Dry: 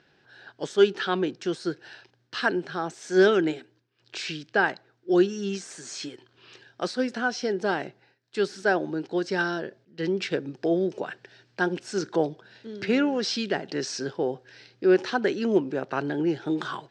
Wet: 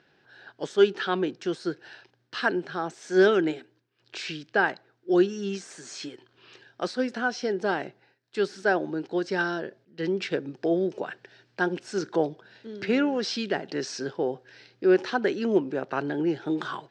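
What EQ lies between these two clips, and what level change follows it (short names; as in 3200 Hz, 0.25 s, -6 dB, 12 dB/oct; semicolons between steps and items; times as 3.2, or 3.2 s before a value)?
low shelf 110 Hz -6 dB; high shelf 4500 Hz -5 dB; 0.0 dB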